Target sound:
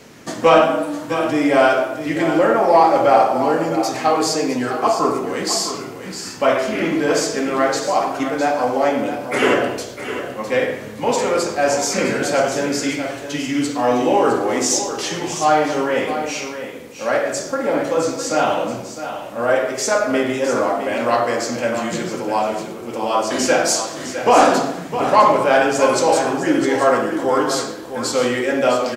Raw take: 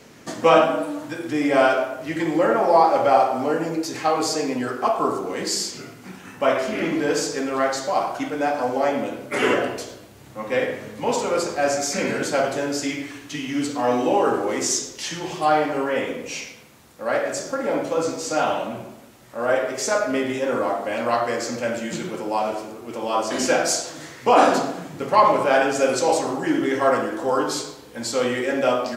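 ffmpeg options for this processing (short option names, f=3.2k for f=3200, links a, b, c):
-filter_complex "[0:a]acontrast=26,asplit=2[a][b];[b]aecho=0:1:658:0.316[c];[a][c]amix=inputs=2:normalize=0,volume=-1dB"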